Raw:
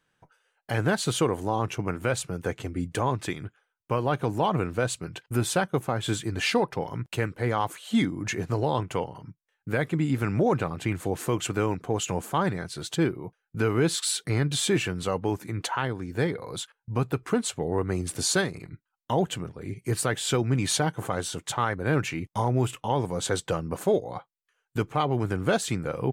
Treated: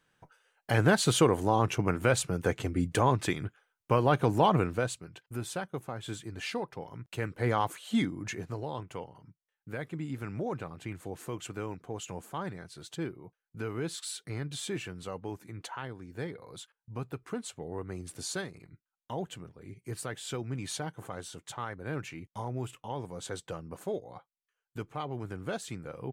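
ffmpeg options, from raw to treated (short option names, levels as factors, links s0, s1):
-af "volume=3.35,afade=t=out:st=4.5:d=0.54:silence=0.251189,afade=t=in:st=7.06:d=0.44:silence=0.334965,afade=t=out:st=7.5:d=1.12:silence=0.316228"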